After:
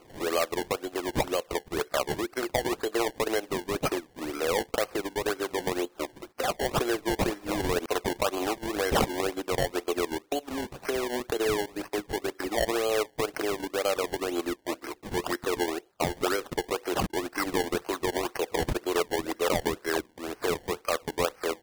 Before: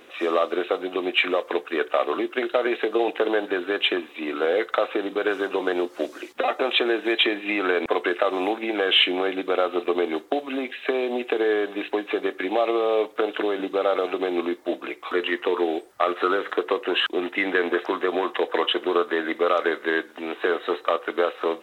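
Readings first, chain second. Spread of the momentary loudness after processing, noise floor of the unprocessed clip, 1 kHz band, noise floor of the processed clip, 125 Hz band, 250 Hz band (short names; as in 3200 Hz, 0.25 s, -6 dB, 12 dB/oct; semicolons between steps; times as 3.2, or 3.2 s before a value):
5 LU, -46 dBFS, -4.5 dB, -59 dBFS, n/a, -5.0 dB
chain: transient shaper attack -2 dB, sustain -8 dB; decimation with a swept rate 24×, swing 100% 2 Hz; gain -4.5 dB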